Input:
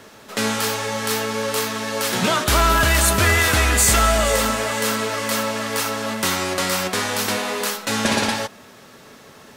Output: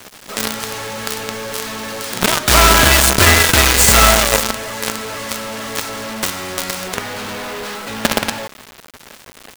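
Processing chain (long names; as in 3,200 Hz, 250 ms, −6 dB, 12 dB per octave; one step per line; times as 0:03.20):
low-pass filter 9,600 Hz 12 dB per octave, from 0:06.95 3,300 Hz
surface crackle 320 per second −38 dBFS
log-companded quantiser 2 bits
level −1 dB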